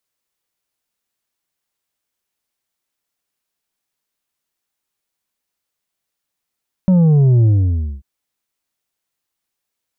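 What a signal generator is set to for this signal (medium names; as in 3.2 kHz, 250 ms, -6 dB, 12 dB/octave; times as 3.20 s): sub drop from 190 Hz, over 1.14 s, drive 5.5 dB, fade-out 0.57 s, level -9 dB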